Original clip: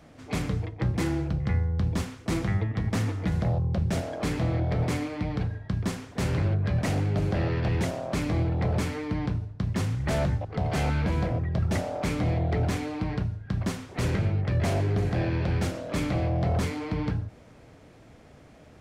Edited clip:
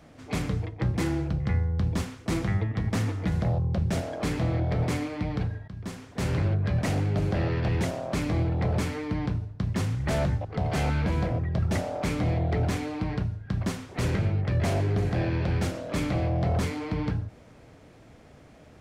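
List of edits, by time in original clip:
5.68–6.31 s: fade in linear, from -14 dB

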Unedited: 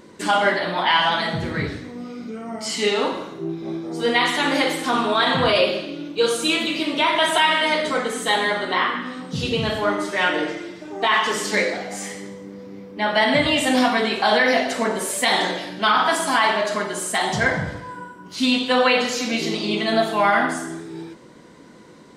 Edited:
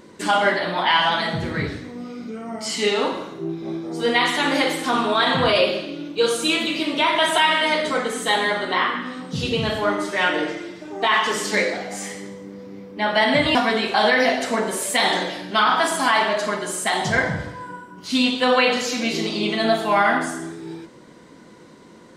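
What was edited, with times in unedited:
13.55–13.83 s: delete

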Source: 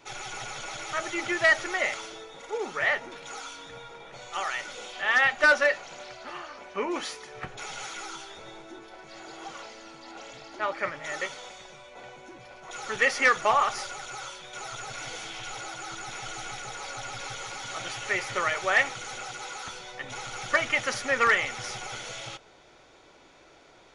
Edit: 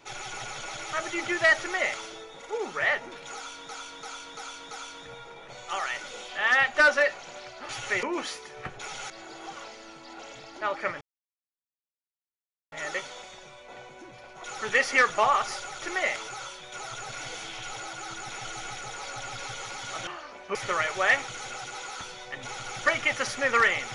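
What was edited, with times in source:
1.60–2.06 s: copy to 14.09 s
3.35–3.69 s: loop, 5 plays
6.33–6.81 s: swap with 17.88–18.22 s
7.88–9.08 s: delete
10.99 s: insert silence 1.71 s

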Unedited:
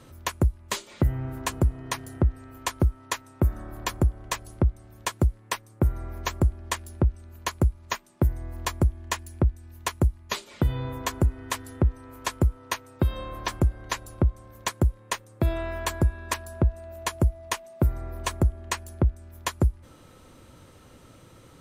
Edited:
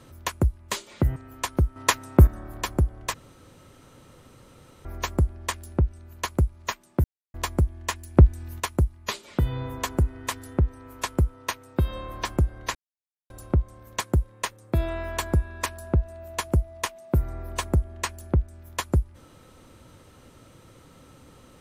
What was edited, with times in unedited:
1.16–2.39 s: delete
2.99–3.50 s: gain +8.5 dB
4.37–6.08 s: room tone
8.27–8.57 s: mute
9.40–9.83 s: gain +8.5 dB
13.98 s: insert silence 0.55 s

